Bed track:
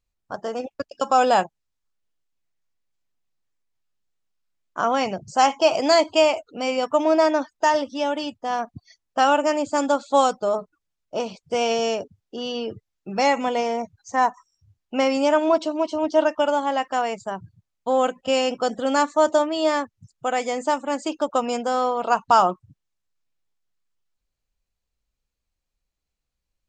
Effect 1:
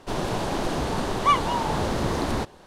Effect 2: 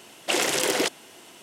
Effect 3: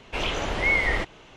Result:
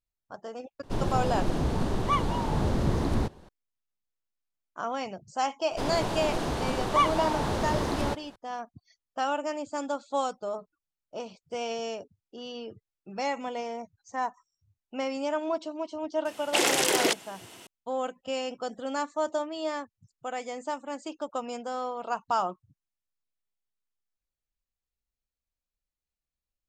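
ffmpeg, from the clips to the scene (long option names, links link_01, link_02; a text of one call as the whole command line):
ffmpeg -i bed.wav -i cue0.wav -i cue1.wav -filter_complex "[1:a]asplit=2[link_01][link_02];[0:a]volume=-11dB[link_03];[link_01]lowshelf=frequency=330:gain=11.5,atrim=end=2.66,asetpts=PTS-STARTPTS,volume=-8dB,afade=type=in:duration=0.004:curve=hsin,afade=type=out:start_time=2.656:duration=0.004:curve=hsin,adelay=830[link_04];[link_02]atrim=end=2.66,asetpts=PTS-STARTPTS,volume=-3.5dB,afade=type=in:duration=0.004:curve=hsin,afade=type=out:start_time=2.656:duration=0.004:curve=hsin,adelay=5700[link_05];[2:a]atrim=end=1.42,asetpts=PTS-STARTPTS,volume=-0.5dB,afade=type=in:duration=0.004:curve=hsin,afade=type=out:start_time=1.416:duration=0.004:curve=hsin,adelay=16250[link_06];[link_03][link_04][link_05][link_06]amix=inputs=4:normalize=0" out.wav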